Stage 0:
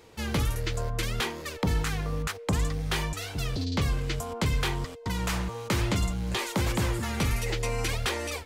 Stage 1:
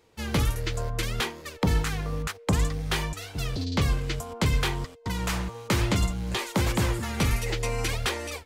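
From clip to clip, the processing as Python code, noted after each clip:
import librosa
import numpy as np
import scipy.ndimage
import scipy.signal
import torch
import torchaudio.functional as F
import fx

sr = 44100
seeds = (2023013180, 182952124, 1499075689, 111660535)

y = fx.upward_expand(x, sr, threshold_db=-47.0, expansion=1.5)
y = y * 10.0 ** (3.5 / 20.0)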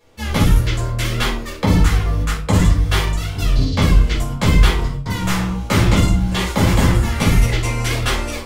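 y = fx.room_shoebox(x, sr, seeds[0], volume_m3=390.0, walls='furnished', distance_m=5.6)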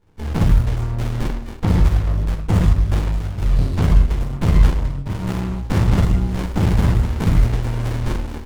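y = fx.peak_eq(x, sr, hz=310.0, db=-7.0, octaves=0.77)
y = fx.running_max(y, sr, window=65)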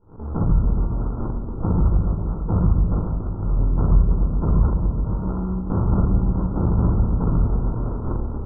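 y = scipy.signal.sosfilt(scipy.signal.cheby1(6, 3, 1400.0, 'lowpass', fs=sr, output='sos'), x)
y = fx.echo_opening(y, sr, ms=140, hz=200, octaves=1, feedback_pct=70, wet_db=-3)
y = fx.pre_swell(y, sr, db_per_s=140.0)
y = y * 10.0 ** (-2.5 / 20.0)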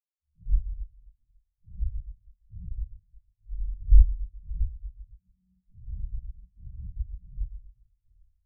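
y = fx.octave_divider(x, sr, octaves=2, level_db=-4.0)
y = fx.spectral_expand(y, sr, expansion=4.0)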